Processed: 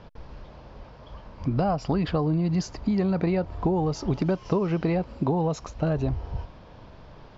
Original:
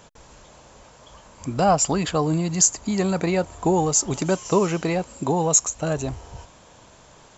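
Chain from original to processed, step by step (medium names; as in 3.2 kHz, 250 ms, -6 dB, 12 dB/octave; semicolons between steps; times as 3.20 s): elliptic low-pass 5.1 kHz, stop band 60 dB; tilt EQ -2.5 dB/octave; compression 6:1, threshold -21 dBFS, peak gain reduction 10 dB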